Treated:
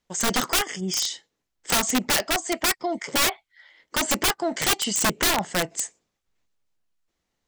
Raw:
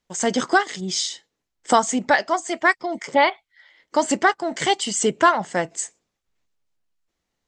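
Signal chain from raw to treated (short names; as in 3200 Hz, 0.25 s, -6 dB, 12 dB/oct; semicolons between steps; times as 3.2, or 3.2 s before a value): 0.51–1.02 Butterworth band-stop 4000 Hz, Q 2.7; wrapped overs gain 15 dB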